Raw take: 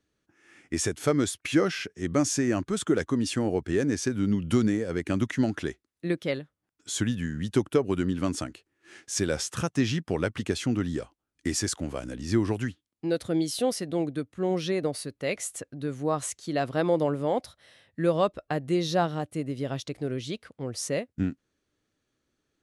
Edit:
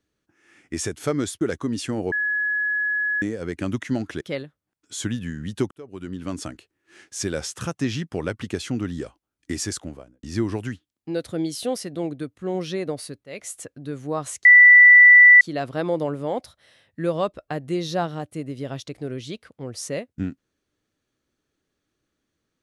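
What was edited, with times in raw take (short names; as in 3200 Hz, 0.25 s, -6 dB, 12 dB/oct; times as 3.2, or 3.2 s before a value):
1.41–2.89 cut
3.6–4.7 bleep 1690 Hz -20.5 dBFS
5.69–6.17 cut
7.67–8.46 fade in
11.67–12.19 studio fade out
15.2–15.47 fade in, from -18.5 dB
16.41 add tone 1970 Hz -6.5 dBFS 0.96 s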